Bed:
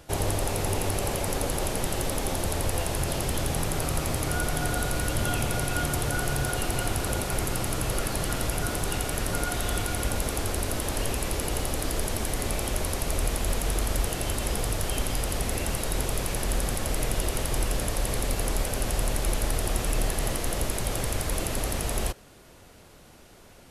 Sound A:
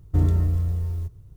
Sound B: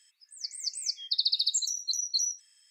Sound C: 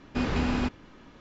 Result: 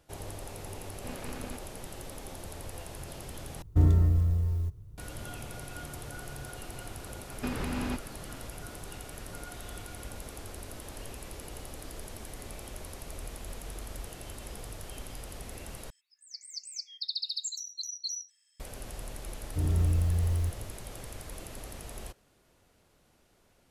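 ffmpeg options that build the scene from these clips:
ffmpeg -i bed.wav -i cue0.wav -i cue1.wav -i cue2.wav -filter_complex "[3:a]asplit=2[link_01][link_02];[1:a]asplit=2[link_03][link_04];[0:a]volume=-14.5dB[link_05];[link_01]aeval=exprs='max(val(0),0)':channel_layout=same[link_06];[link_02]alimiter=limit=-22.5dB:level=0:latency=1:release=405[link_07];[link_04]dynaudnorm=framelen=210:gausssize=3:maxgain=11.5dB[link_08];[link_05]asplit=3[link_09][link_10][link_11];[link_09]atrim=end=3.624[link_12];[link_03]atrim=end=1.36,asetpts=PTS-STARTPTS,volume=-2dB[link_13];[link_10]atrim=start=4.976:end=15.904[link_14];[2:a]atrim=end=2.7,asetpts=PTS-STARTPTS,volume=-7.5dB[link_15];[link_11]atrim=start=18.596[link_16];[link_06]atrim=end=1.2,asetpts=PTS-STARTPTS,volume=-11dB,afade=type=in:duration=0.004:curve=hsin,afade=type=out:start_time=1.196:duration=0.004:curve=hsin,adelay=890[link_17];[link_07]atrim=end=1.2,asetpts=PTS-STARTPTS,volume=-1dB,afade=type=in:duration=0.004:curve=hsin,afade=type=out:start_time=1.196:duration=0.004:curve=hsin,adelay=7280[link_18];[link_08]atrim=end=1.36,asetpts=PTS-STARTPTS,volume=-11.5dB,afade=type=in:duration=0.004:curve=hsin,afade=type=out:start_time=1.356:duration=0.004:curve=hsin,adelay=19420[link_19];[link_12][link_13]acrossfade=duration=0.004:curve1=hsin:curve2=hsin[link_20];[link_20][link_14]acrossfade=duration=0.004:curve1=hsin:curve2=hsin[link_21];[link_21][link_15]acrossfade=duration=0.004:curve1=hsin:curve2=hsin[link_22];[link_22][link_16]acrossfade=duration=0.004:curve1=hsin:curve2=hsin[link_23];[link_23][link_17][link_18][link_19]amix=inputs=4:normalize=0" out.wav

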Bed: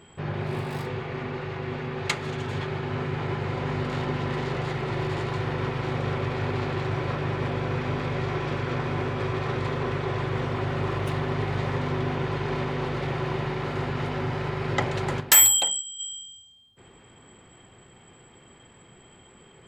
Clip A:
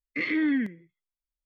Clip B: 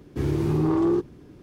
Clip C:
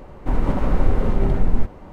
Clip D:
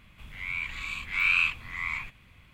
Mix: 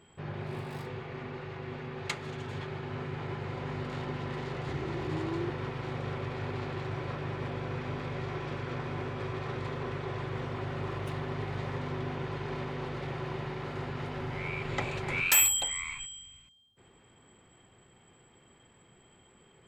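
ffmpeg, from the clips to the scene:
ffmpeg -i bed.wav -i cue0.wav -i cue1.wav -i cue2.wav -i cue3.wav -filter_complex "[0:a]volume=-8dB[link_01];[2:a]aresample=16000,aresample=44100[link_02];[4:a]lowpass=9500[link_03];[link_02]atrim=end=1.42,asetpts=PTS-STARTPTS,volume=-14.5dB,afade=type=in:duration=0.004:curve=hsin,afade=type=out:start_time=1.416:duration=0.004:curve=hsin,adelay=4500[link_04];[link_03]atrim=end=2.53,asetpts=PTS-STARTPTS,volume=-7dB,afade=type=in:duration=0.004:curve=hsin,afade=type=out:start_time=2.526:duration=0.004:curve=hsin,adelay=615636S[link_05];[link_01][link_04][link_05]amix=inputs=3:normalize=0" out.wav

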